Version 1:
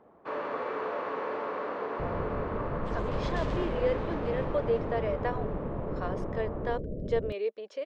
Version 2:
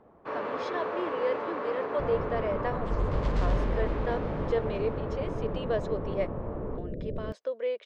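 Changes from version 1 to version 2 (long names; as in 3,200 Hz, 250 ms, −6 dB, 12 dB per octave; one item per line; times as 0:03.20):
speech: entry −2.60 s
first sound: add low-shelf EQ 110 Hz +11 dB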